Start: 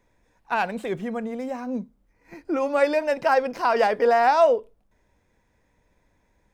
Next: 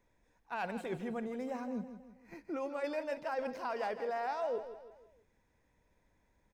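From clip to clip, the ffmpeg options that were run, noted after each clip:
-af "areverse,acompressor=threshold=0.0447:ratio=6,areverse,aecho=1:1:161|322|483|644:0.266|0.117|0.0515|0.0227,volume=0.422"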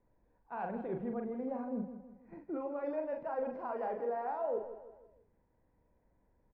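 -filter_complex "[0:a]lowpass=1000,asplit=2[s0][s1];[s1]adelay=42,volume=0.562[s2];[s0][s2]amix=inputs=2:normalize=0"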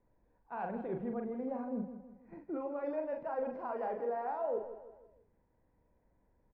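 -af anull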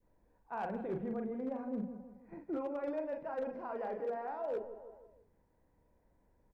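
-af "bandreject=f=60:t=h:w=6,bandreject=f=120:t=h:w=6,bandreject=f=180:t=h:w=6,bandreject=f=240:t=h:w=6,adynamicequalizer=threshold=0.00398:dfrequency=850:dqfactor=0.88:tfrequency=850:tqfactor=0.88:attack=5:release=100:ratio=0.375:range=3:mode=cutabove:tftype=bell,volume=42.2,asoftclip=hard,volume=0.0237,volume=1.19"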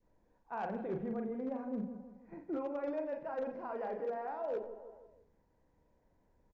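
-filter_complex "[0:a]bandreject=f=50:t=h:w=6,bandreject=f=100:t=h:w=6,aresample=16000,aresample=44100,asplit=2[s0][s1];[s1]adelay=87.46,volume=0.141,highshelf=f=4000:g=-1.97[s2];[s0][s2]amix=inputs=2:normalize=0"

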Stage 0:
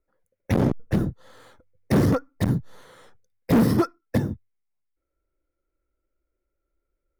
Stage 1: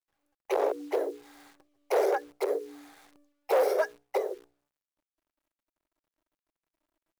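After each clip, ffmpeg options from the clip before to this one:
-af "afreqshift=290,bandreject=f=60:t=h:w=6,bandreject=f=120:t=h:w=6,bandreject=f=180:t=h:w=6,bandreject=f=240:t=h:w=6,bandreject=f=300:t=h:w=6,bandreject=f=360:t=h:w=6,bandreject=f=420:t=h:w=6,bandreject=f=480:t=h:w=6,acrusher=bits=9:dc=4:mix=0:aa=0.000001,volume=0.501"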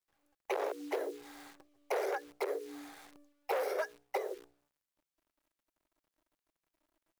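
-filter_complex "[0:a]acrossover=split=1300|2800[s0][s1][s2];[s0]acompressor=threshold=0.0141:ratio=4[s3];[s1]acompressor=threshold=0.00631:ratio=4[s4];[s2]acompressor=threshold=0.00224:ratio=4[s5];[s3][s4][s5]amix=inputs=3:normalize=0,volume=1.26"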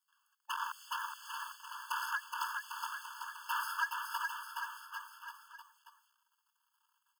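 -filter_complex "[0:a]aeval=exprs='clip(val(0),-1,0.0299)':c=same,asplit=2[s0][s1];[s1]aecho=0:1:420|798|1138|1444|1720:0.631|0.398|0.251|0.158|0.1[s2];[s0][s2]amix=inputs=2:normalize=0,afftfilt=real='re*eq(mod(floor(b*sr/1024/880),2),1)':imag='im*eq(mod(floor(b*sr/1024/880),2),1)':win_size=1024:overlap=0.75,volume=2.51"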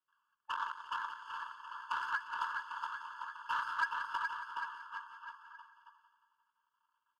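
-filter_complex "[0:a]adynamicsmooth=sensitivity=3:basefreq=2100,asplit=2[s0][s1];[s1]aecho=0:1:177|354|531|708|885|1062:0.266|0.149|0.0834|0.0467|0.0262|0.0147[s2];[s0][s2]amix=inputs=2:normalize=0,volume=1.19"

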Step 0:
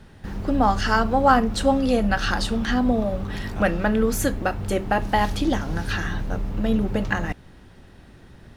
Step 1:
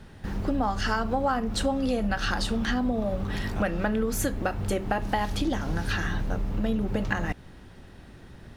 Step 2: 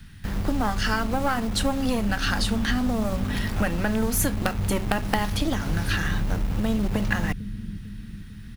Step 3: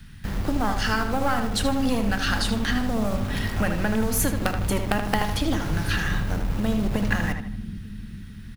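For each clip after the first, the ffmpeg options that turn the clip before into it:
-af "acompressor=threshold=0.0708:ratio=5"
-filter_complex "[0:a]acrossover=split=240|1300[s0][s1][s2];[s0]aecho=1:1:449|898|1347|1796|2245|2694|3143:0.422|0.228|0.123|0.0664|0.0359|0.0194|0.0105[s3];[s1]acrusher=bits=4:dc=4:mix=0:aa=0.000001[s4];[s2]aexciter=amount=1.7:drive=5.6:freq=10000[s5];[s3][s4][s5]amix=inputs=3:normalize=0,volume=1.58"
-filter_complex "[0:a]asplit=2[s0][s1];[s1]adelay=78,lowpass=f=3800:p=1,volume=0.473,asplit=2[s2][s3];[s3]adelay=78,lowpass=f=3800:p=1,volume=0.41,asplit=2[s4][s5];[s5]adelay=78,lowpass=f=3800:p=1,volume=0.41,asplit=2[s6][s7];[s7]adelay=78,lowpass=f=3800:p=1,volume=0.41,asplit=2[s8][s9];[s9]adelay=78,lowpass=f=3800:p=1,volume=0.41[s10];[s0][s2][s4][s6][s8][s10]amix=inputs=6:normalize=0"

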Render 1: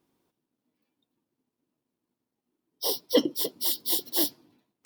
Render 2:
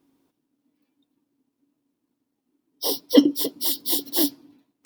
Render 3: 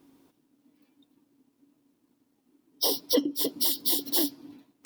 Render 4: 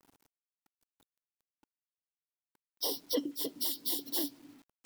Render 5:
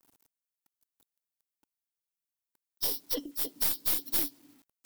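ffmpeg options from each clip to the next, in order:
-af "equalizer=f=280:w=7.6:g=14.5,volume=1.41"
-af "acompressor=threshold=0.0355:ratio=8,volume=2.11"
-af "acrusher=bits=8:mix=0:aa=0.000001,volume=0.398"
-af "crystalizer=i=1.5:c=0,aeval=exprs='0.376*(cos(1*acos(clip(val(0)/0.376,-1,1)))-cos(1*PI/2))+0.188*(cos(2*acos(clip(val(0)/0.376,-1,1)))-cos(2*PI/2))':c=same,volume=0.562"

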